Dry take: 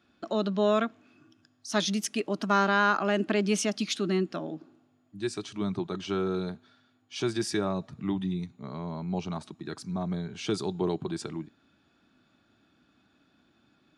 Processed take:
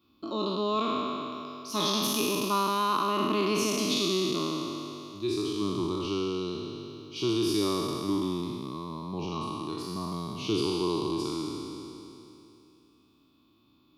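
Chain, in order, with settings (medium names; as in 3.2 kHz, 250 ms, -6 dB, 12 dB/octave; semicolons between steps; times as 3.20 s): spectral sustain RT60 2.98 s; FFT filter 110 Hz 0 dB, 190 Hz -6 dB, 310 Hz +3 dB, 740 Hz -13 dB, 1.1 kHz +6 dB, 1.6 kHz -24 dB, 2.4 kHz -4 dB, 4.2 kHz +1 dB, 8.3 kHz -12 dB, 13 kHz +13 dB; trim -1 dB; MP3 192 kbps 48 kHz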